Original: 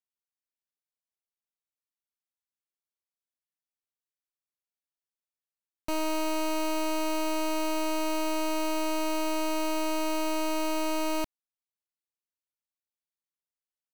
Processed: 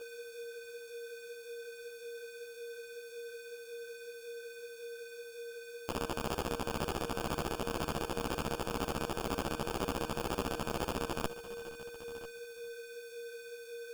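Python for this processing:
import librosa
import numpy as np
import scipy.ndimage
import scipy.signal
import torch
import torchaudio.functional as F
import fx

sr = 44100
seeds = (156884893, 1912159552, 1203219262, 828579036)

p1 = fx.tone_stack(x, sr, knobs='5-5-5')
p2 = fx.over_compress(p1, sr, threshold_db=-48.0, ratio=-0.5)
p3 = p2 + fx.echo_single(p2, sr, ms=994, db=-16.5, dry=0)
p4 = p3 + 10.0 ** (-44.0 / 20.0) * np.sin(2.0 * np.pi * 470.0 * np.arange(len(p3)) / sr)
p5 = F.preemphasis(torch.from_numpy(p4), 0.8).numpy()
p6 = p5 + 10.0 ** (-17.0 / 20.0) * np.pad(p5, (int(439 * sr / 1000.0), 0))[:len(p5)]
p7 = fx.sample_hold(p6, sr, seeds[0], rate_hz=2000.0, jitter_pct=0)
p8 = fx.ensemble(p7, sr)
y = p8 * librosa.db_to_amplitude(18.0)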